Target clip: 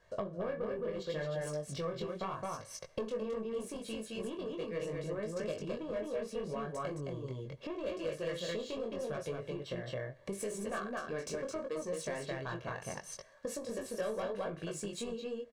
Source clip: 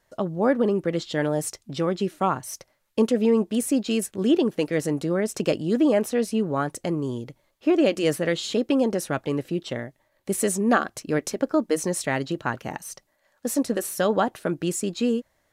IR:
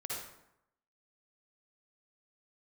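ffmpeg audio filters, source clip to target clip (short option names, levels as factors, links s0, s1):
-filter_complex "[0:a]asplit=2[s0][s1];[s1]aecho=0:1:40.82|215.7:0.316|0.708[s2];[s0][s2]amix=inputs=2:normalize=0,asoftclip=type=tanh:threshold=0.168,adynamicsmooth=sensitivity=3:basefreq=5900,flanger=delay=18.5:depth=4.8:speed=0.75,acompressor=threshold=0.00794:ratio=6,aecho=1:1:1.8:0.59,asplit=2[s3][s4];[1:a]atrim=start_sample=2205[s5];[s4][s5]afir=irnorm=-1:irlink=0,volume=0.0841[s6];[s3][s6]amix=inputs=2:normalize=0,volume=1.58"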